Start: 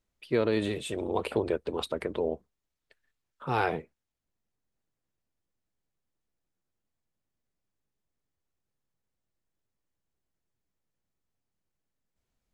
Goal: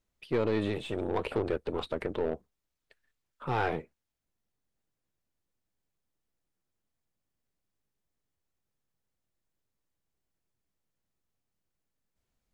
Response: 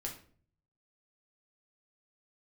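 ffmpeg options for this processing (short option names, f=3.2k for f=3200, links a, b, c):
-filter_complex "[0:a]asoftclip=type=tanh:threshold=-20.5dB,aeval=exprs='0.0944*(cos(1*acos(clip(val(0)/0.0944,-1,1)))-cos(1*PI/2))+0.00841*(cos(4*acos(clip(val(0)/0.0944,-1,1)))-cos(4*PI/2))+0.0015*(cos(8*acos(clip(val(0)/0.0944,-1,1)))-cos(8*PI/2))':c=same,acrossover=split=3900[a][b];[b]acompressor=threshold=-56dB:ratio=4:attack=1:release=60[c];[a][c]amix=inputs=2:normalize=0"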